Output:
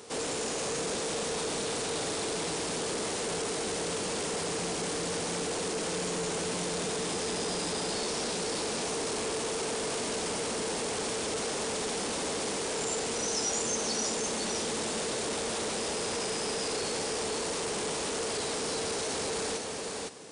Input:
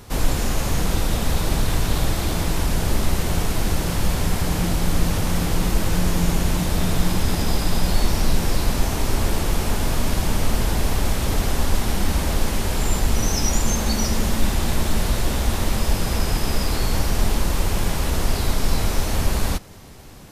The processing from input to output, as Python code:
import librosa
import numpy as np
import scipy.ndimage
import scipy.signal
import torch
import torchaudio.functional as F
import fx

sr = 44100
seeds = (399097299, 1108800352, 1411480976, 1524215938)

p1 = fx.peak_eq(x, sr, hz=450.0, db=11.5, octaves=0.23)
p2 = fx.sample_hold(p1, sr, seeds[0], rate_hz=2200.0, jitter_pct=0)
p3 = p1 + (p2 * librosa.db_to_amplitude(-8.0))
p4 = scipy.signal.sosfilt(scipy.signal.butter(2, 300.0, 'highpass', fs=sr, output='sos'), p3)
p5 = p4 + fx.echo_single(p4, sr, ms=510, db=-5.5, dry=0)
p6 = 10.0 ** (-24.5 / 20.0) * np.tanh(p5 / 10.0 ** (-24.5 / 20.0))
p7 = fx.brickwall_lowpass(p6, sr, high_hz=10000.0)
p8 = fx.high_shelf(p7, sr, hz=4600.0, db=8.5)
y = p8 * librosa.db_to_amplitude(-5.5)